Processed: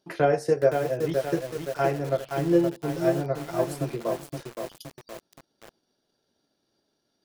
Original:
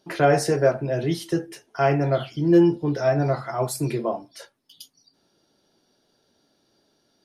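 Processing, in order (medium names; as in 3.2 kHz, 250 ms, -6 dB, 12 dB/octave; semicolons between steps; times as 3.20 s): dynamic bell 490 Hz, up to +8 dB, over -35 dBFS, Q 3.8; transient shaper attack +5 dB, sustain -5 dB; bit-crushed delay 519 ms, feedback 55%, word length 5-bit, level -5 dB; trim -8.5 dB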